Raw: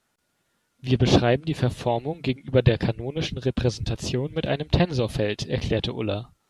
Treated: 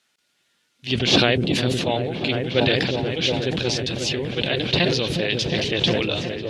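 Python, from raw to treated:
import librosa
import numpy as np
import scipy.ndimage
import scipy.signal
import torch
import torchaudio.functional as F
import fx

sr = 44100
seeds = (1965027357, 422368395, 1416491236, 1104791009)

p1 = fx.weighting(x, sr, curve='D')
p2 = p1 + fx.echo_opening(p1, sr, ms=360, hz=400, octaves=1, feedback_pct=70, wet_db=-3, dry=0)
p3 = fx.sustainer(p2, sr, db_per_s=32.0)
y = p3 * librosa.db_to_amplitude(-2.0)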